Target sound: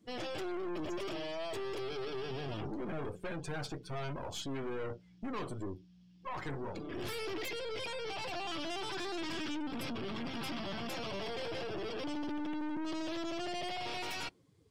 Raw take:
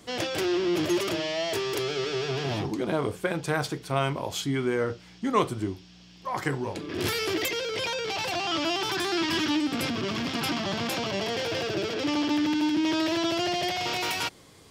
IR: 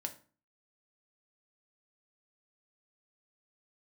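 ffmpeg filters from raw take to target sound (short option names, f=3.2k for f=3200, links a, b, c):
-filter_complex "[0:a]aeval=exprs='(tanh(56.2*val(0)+0.65)-tanh(0.65))/56.2':c=same,asettb=1/sr,asplit=3[a][b][c];[a]atrim=end=10.974[d];[b]atrim=start=10.97:end=13.19,asetpts=PTS-STARTPTS,afade=t=in:d=0.004:c=qsin,afade=t=out:st=2.216:d=0.004:c=qsin,highshelf=f=5.3k:g=2.5[e];[c]atrim=start=13.186[f];[d][e]acrossfade=d=0.004:c1=hsin:c2=qsin[g];[g][f]acrossfade=d=0.004:c1=qsin:c2=hsin,afftdn=nr=19:nf=-47,volume=-2dB"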